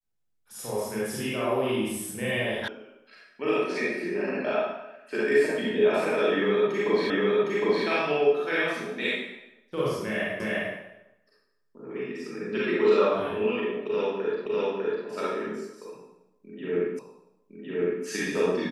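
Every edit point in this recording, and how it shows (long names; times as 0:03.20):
0:02.68: cut off before it has died away
0:07.10: the same again, the last 0.76 s
0:10.40: the same again, the last 0.35 s
0:14.46: the same again, the last 0.6 s
0:16.99: the same again, the last 1.06 s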